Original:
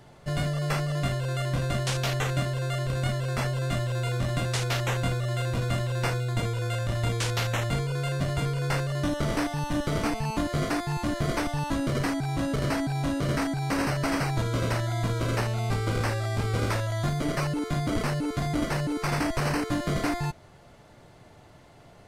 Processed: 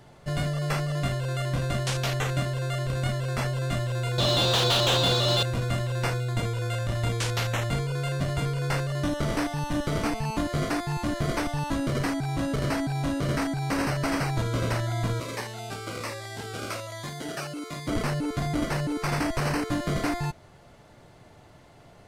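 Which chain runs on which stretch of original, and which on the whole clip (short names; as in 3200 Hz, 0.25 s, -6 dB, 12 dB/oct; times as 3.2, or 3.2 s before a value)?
4.18–5.43 median filter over 9 samples + resonant high shelf 2800 Hz +9.5 dB, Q 3 + overdrive pedal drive 26 dB, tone 1800 Hz, clips at -10 dBFS
15.2–17.88 HPF 510 Hz 6 dB/oct + cascading phaser falling 1.2 Hz
whole clip: dry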